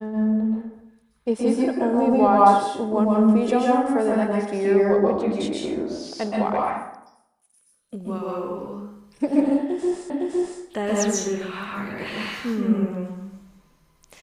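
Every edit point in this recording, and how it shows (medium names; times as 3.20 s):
10.10 s: repeat of the last 0.51 s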